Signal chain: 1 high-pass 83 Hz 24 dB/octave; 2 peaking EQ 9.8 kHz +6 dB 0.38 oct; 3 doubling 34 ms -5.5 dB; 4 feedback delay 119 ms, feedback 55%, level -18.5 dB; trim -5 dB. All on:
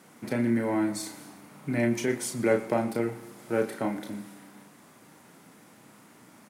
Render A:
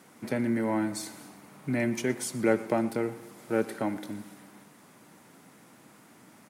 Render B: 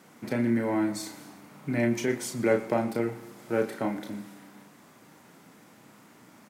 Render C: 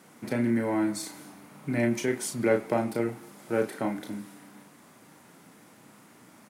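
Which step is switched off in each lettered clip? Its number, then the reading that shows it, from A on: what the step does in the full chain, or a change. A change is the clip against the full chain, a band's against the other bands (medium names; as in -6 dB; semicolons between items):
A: 3, loudness change -1.5 LU; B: 2, 8 kHz band -2.0 dB; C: 4, echo-to-direct -17.0 dB to none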